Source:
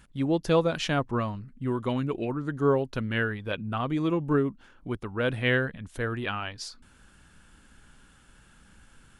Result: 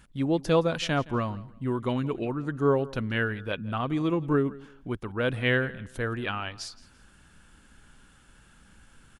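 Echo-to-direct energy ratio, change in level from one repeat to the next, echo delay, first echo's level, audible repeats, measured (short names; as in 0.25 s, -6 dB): -19.5 dB, -11.5 dB, 0.169 s, -20.0 dB, 2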